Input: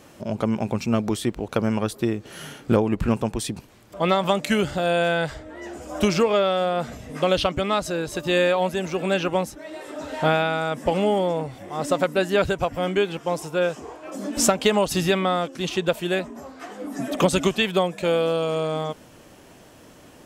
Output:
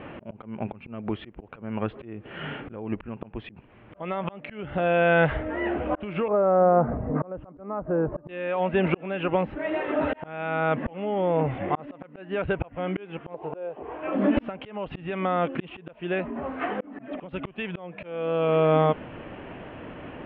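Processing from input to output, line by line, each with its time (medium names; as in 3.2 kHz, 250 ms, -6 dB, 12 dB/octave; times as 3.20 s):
6.28–8.29 s: low-pass 1.2 kHz 24 dB/octave
13.34–13.83 s: high-order bell 580 Hz +11.5 dB
whole clip: steep low-pass 2.9 kHz 48 dB/octave; compression 8:1, threshold -23 dBFS; slow attack 710 ms; trim +9 dB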